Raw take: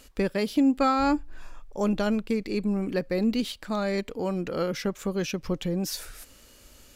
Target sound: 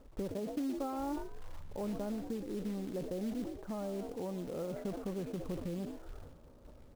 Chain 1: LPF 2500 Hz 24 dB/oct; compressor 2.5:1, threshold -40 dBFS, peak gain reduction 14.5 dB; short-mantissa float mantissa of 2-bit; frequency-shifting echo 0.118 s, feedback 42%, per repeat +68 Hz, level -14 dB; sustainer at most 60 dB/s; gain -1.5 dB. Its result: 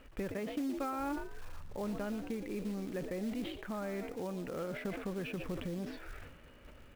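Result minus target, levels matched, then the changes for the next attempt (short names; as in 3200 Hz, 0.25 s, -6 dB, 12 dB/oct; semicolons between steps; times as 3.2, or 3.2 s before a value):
2000 Hz band +10.5 dB
change: LPF 1000 Hz 24 dB/oct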